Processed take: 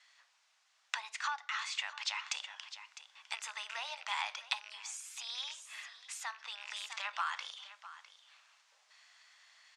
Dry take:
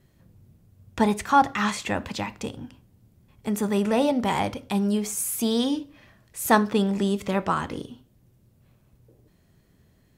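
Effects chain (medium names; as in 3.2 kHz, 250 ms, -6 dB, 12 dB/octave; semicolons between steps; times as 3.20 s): rattle on loud lows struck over -29 dBFS, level -28 dBFS; compression 8:1, threshold -37 dBFS, peak gain reduction 23 dB; Bessel high-pass 1.5 kHz, order 8; speed mistake 24 fps film run at 25 fps; delay 655 ms -15.5 dB; gain riding within 4 dB 0.5 s; low-pass 6.6 kHz 24 dB/octave; trim +8.5 dB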